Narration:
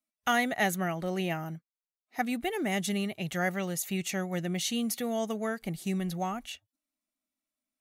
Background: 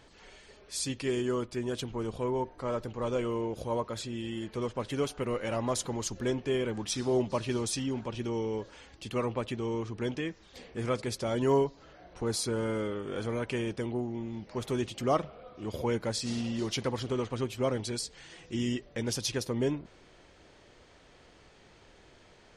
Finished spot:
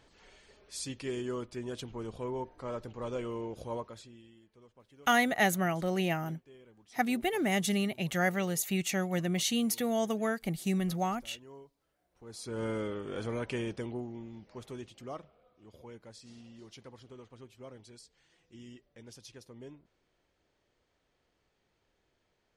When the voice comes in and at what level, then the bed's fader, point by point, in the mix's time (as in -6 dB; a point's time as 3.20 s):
4.80 s, +1.0 dB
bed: 3.75 s -5.5 dB
4.47 s -26 dB
12.08 s -26 dB
12.63 s -2.5 dB
13.64 s -2.5 dB
15.60 s -19 dB